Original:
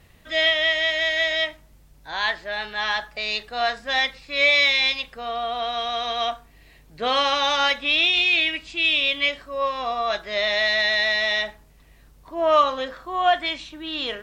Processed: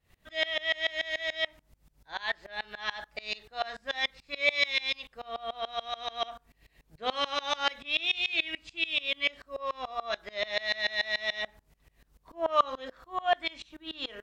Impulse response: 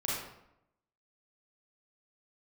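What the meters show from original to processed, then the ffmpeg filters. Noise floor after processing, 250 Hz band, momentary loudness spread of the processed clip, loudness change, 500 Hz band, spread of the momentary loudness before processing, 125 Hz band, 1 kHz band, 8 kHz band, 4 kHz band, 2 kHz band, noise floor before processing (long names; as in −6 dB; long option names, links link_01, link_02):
−71 dBFS, −11.0 dB, 11 LU, −10.0 dB, −10.0 dB, 11 LU, can't be measured, −9.5 dB, −9.5 dB, −10.0 dB, −10.0 dB, −53 dBFS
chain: -af "bandreject=frequency=60:width_type=h:width=6,bandreject=frequency=120:width_type=h:width=6,bandreject=frequency=180:width_type=h:width=6,bandreject=frequency=240:width_type=h:width=6,bandreject=frequency=300:width_type=h:width=6,bandreject=frequency=360:width_type=h:width=6,aeval=exprs='val(0)*pow(10,-25*if(lt(mod(-6.9*n/s,1),2*abs(-6.9)/1000),1-mod(-6.9*n/s,1)/(2*abs(-6.9)/1000),(mod(-6.9*n/s,1)-2*abs(-6.9)/1000)/(1-2*abs(-6.9)/1000))/20)':channel_layout=same,volume=-2.5dB"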